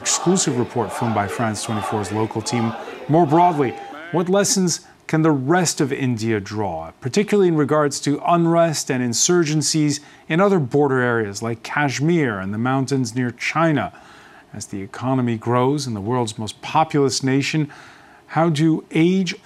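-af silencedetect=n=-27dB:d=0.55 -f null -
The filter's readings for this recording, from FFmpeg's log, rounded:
silence_start: 13.88
silence_end: 14.55 | silence_duration: 0.66
silence_start: 17.65
silence_end: 18.32 | silence_duration: 0.67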